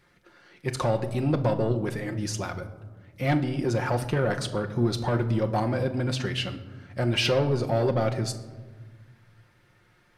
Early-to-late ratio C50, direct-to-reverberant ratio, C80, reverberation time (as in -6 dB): 12.5 dB, 4.5 dB, 15.0 dB, 1.4 s